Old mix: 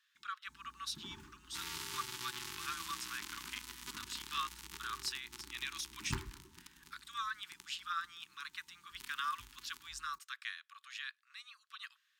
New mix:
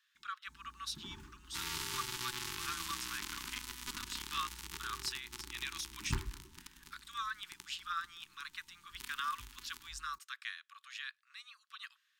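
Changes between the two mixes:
second sound +3.5 dB; master: remove HPF 100 Hz 6 dB/oct

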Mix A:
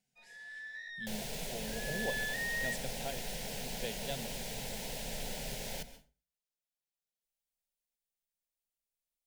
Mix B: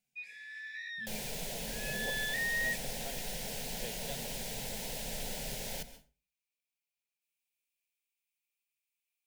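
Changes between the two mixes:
speech -5.5 dB; first sound: add resonant high-pass 2400 Hz, resonance Q 9.4; master: add high shelf 7100 Hz +4 dB

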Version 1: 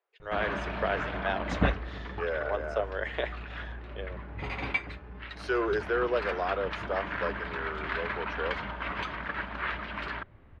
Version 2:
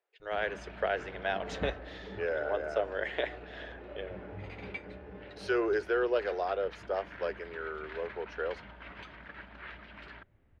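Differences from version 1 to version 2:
first sound -11.5 dB; second sound: add bell 490 Hz +9 dB 0.96 oct; master: add bell 1100 Hz -6.5 dB 0.53 oct

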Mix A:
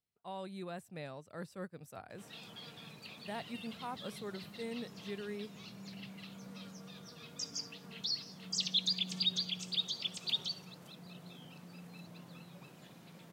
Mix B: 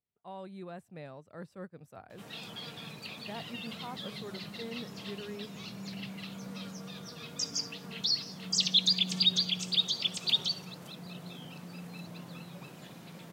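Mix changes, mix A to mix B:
speech: add high shelf 3000 Hz -10 dB; background +7.0 dB

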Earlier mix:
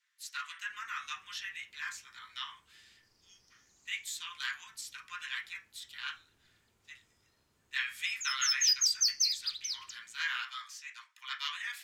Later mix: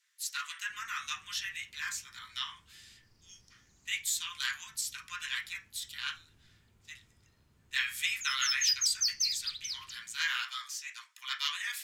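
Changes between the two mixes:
background: add tone controls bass +11 dB, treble -12 dB; master: add high shelf 4400 Hz +12 dB

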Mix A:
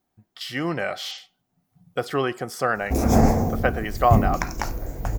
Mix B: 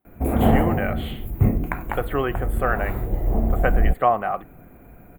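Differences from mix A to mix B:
background: entry -2.70 s; master: add Butterworth band-stop 5500 Hz, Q 0.77

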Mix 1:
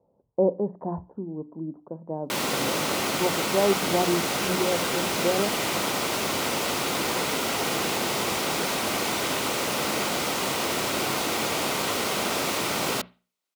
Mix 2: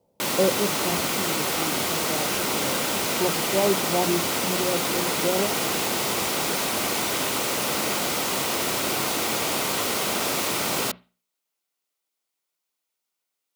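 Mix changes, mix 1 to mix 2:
background: entry -2.10 s; master: add high shelf 7300 Hz +6.5 dB

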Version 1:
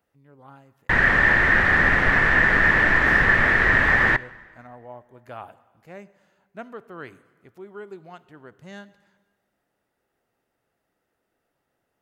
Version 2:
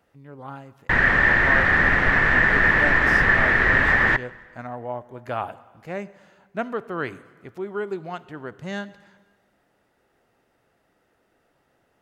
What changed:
speech +10.0 dB; master: add high shelf 10000 Hz -9.5 dB

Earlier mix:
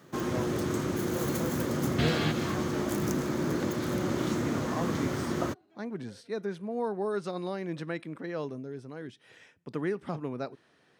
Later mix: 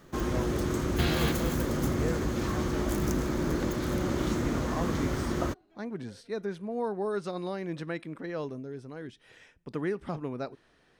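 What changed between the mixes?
second sound: entry -1.00 s; master: remove HPF 97 Hz 24 dB/oct

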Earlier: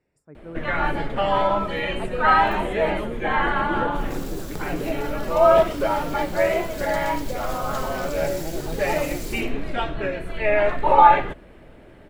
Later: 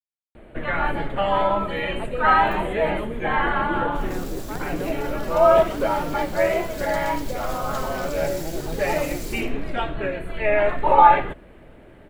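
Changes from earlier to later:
speech: entry +2.00 s; first sound: add bell 5500 Hz -13.5 dB 0.45 oct

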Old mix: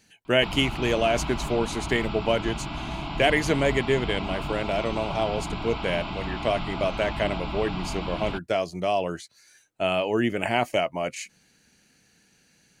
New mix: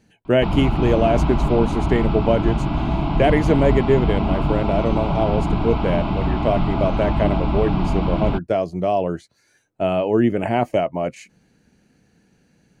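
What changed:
background +5.0 dB; master: add tilt shelf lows +8.5 dB, about 1300 Hz

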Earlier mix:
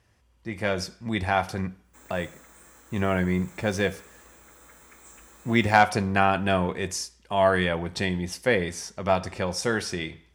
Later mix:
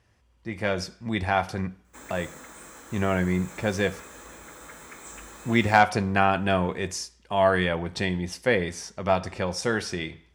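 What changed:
background +9.0 dB; master: add high shelf 11000 Hz -9 dB

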